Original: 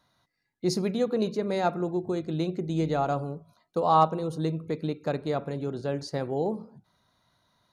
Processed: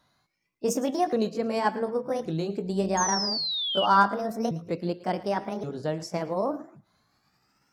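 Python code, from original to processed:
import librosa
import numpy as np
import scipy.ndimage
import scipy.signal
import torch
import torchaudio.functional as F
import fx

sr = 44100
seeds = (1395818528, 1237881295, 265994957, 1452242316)

y = fx.pitch_ramps(x, sr, semitones=7.0, every_ms=1127)
y = fx.spec_paint(y, sr, seeds[0], shape='fall', start_s=2.97, length_s=0.89, low_hz=2800.0, high_hz=6600.0, level_db=-31.0)
y = fx.echo_thinned(y, sr, ms=112, feedback_pct=25, hz=790.0, wet_db=-17)
y = F.gain(torch.from_numpy(y), 1.5).numpy()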